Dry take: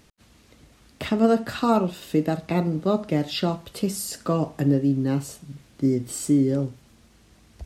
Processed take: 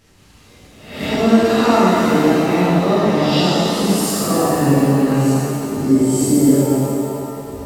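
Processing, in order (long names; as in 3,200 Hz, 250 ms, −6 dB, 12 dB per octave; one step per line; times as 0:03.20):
peak hold with a rise ahead of every peak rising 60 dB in 0.67 s
reverb with rising layers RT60 2.8 s, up +7 semitones, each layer −8 dB, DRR −11.5 dB
level −4.5 dB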